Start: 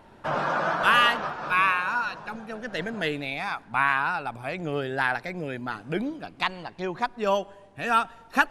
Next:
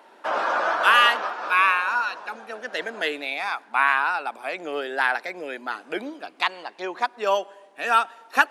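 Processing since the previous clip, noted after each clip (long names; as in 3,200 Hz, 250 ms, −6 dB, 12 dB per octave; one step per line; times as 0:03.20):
Bessel high-pass filter 440 Hz, order 6
level +3.5 dB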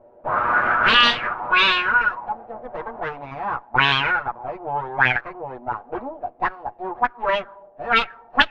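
lower of the sound and its delayed copy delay 8.3 ms
envelope-controlled low-pass 580–3,500 Hz up, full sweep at −15.5 dBFS
level −1 dB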